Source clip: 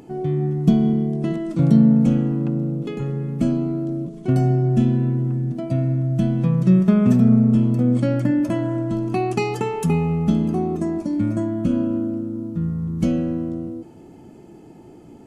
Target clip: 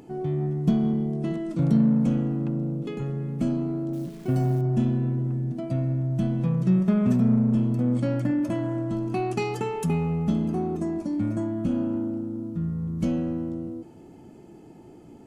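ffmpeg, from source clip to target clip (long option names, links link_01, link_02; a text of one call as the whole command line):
ffmpeg -i in.wav -filter_complex "[0:a]asplit=2[link_01][link_02];[link_02]asoftclip=type=tanh:threshold=-22dB,volume=-5dB[link_03];[link_01][link_03]amix=inputs=2:normalize=0,asettb=1/sr,asplit=3[link_04][link_05][link_06];[link_04]atrim=end=3.934[link_07];[link_05]atrim=start=3.93:end=4.61,asetpts=PTS-STARTPTS,afade=type=in:duration=0.004:curve=qsin,afade=type=out:start_time=0.676:duration=0.004:curve=qsin,acrusher=bits=8:dc=4:mix=0:aa=0.000001[link_08];[link_06]atrim=start=4.606[link_09];[link_07][link_08]acrossfade=duration=0.004:curve1=hsin:curve2=qsin[link_10];[link_10][link_09]acrossfade=duration=0.004:curve1=qsin:curve2=hsin,volume=-7.5dB" out.wav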